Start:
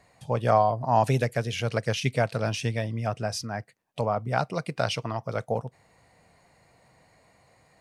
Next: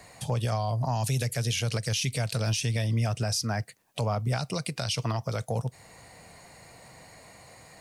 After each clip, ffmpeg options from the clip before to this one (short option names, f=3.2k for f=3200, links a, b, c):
-filter_complex "[0:a]highshelf=f=4.1k:g=8.5,acrossover=split=150|3000[a][b][c];[b]acompressor=threshold=-40dB:ratio=2.5[d];[a][d][c]amix=inputs=3:normalize=0,alimiter=level_in=4dB:limit=-24dB:level=0:latency=1:release=94,volume=-4dB,volume=8.5dB"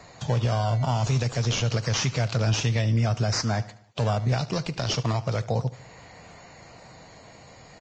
-filter_complex "[0:a]asplit=2[a][b];[b]acrusher=samples=14:mix=1:aa=0.000001:lfo=1:lforange=14:lforate=0.29,volume=-4.5dB[c];[a][c]amix=inputs=2:normalize=0,aecho=1:1:74|148|222|296:0.126|0.0642|0.0327|0.0167" -ar 16000 -c:a libvorbis -b:a 32k